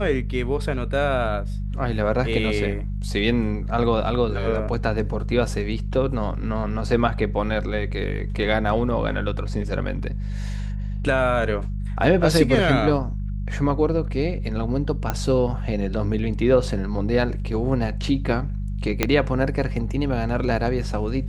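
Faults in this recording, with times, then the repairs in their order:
mains hum 50 Hz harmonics 4 −27 dBFS
0:15.10: click −9 dBFS
0:19.03: click −3 dBFS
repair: click removal
hum removal 50 Hz, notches 4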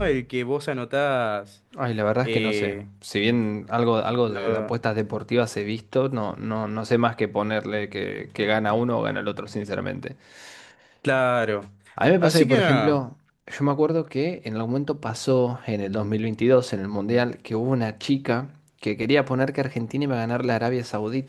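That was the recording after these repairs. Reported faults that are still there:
0:19.03: click

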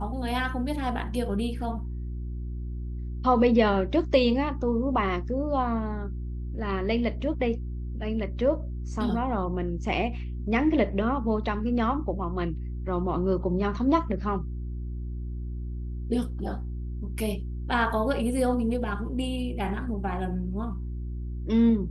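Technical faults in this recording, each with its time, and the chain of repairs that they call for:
mains hum 60 Hz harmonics 6 −33 dBFS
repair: hum removal 60 Hz, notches 6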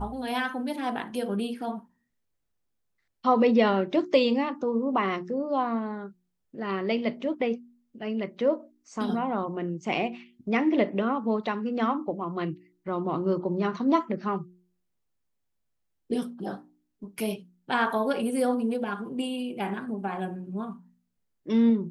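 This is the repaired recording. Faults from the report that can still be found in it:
none of them is left

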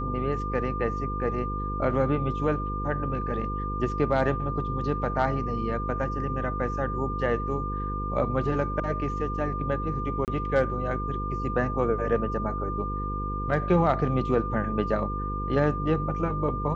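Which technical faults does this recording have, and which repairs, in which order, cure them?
mains buzz 50 Hz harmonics 10 −32 dBFS
whistle 1,200 Hz −32 dBFS
0:10.25–0:10.28: drop-out 28 ms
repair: notch filter 1,200 Hz, Q 30
hum removal 50 Hz, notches 10
repair the gap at 0:10.25, 28 ms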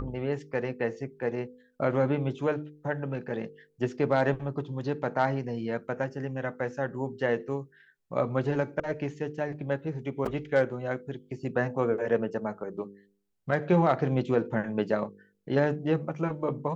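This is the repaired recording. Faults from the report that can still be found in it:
none of them is left

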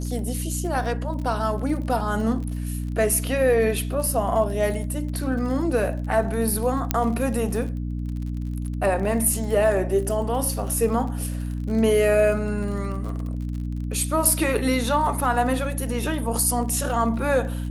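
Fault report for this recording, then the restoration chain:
surface crackle 37 per second −32 dBFS
mains hum 60 Hz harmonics 5 −28 dBFS
0:06.91: click −4 dBFS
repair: click removal
hum removal 60 Hz, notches 5

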